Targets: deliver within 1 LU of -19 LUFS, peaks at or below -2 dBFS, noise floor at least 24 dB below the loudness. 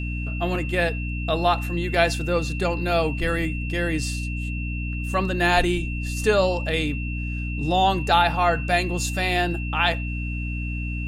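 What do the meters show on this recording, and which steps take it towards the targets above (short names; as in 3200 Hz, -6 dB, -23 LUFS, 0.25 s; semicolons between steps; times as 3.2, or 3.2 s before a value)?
hum 60 Hz; harmonics up to 300 Hz; hum level -26 dBFS; steady tone 2700 Hz; tone level -34 dBFS; loudness -23.5 LUFS; peak -4.5 dBFS; loudness target -19.0 LUFS
-> notches 60/120/180/240/300 Hz; notch 2700 Hz, Q 30; gain +4.5 dB; limiter -2 dBFS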